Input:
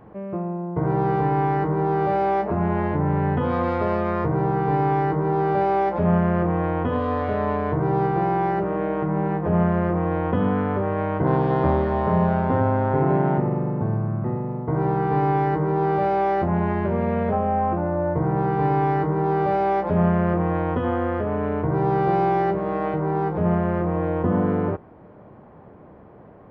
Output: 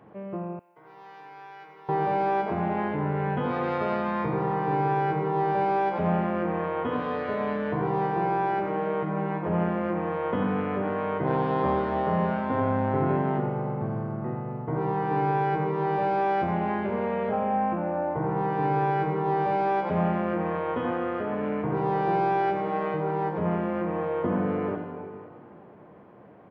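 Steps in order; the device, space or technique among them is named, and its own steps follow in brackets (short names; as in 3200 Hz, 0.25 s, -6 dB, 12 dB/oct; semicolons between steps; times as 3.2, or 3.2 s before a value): PA in a hall (HPF 130 Hz 12 dB/oct; bell 2800 Hz +5 dB 1.2 oct; echo 88 ms -9.5 dB; reverb RT60 2.5 s, pre-delay 86 ms, DRR 7.5 dB); 0.59–1.89 differentiator; gain -5 dB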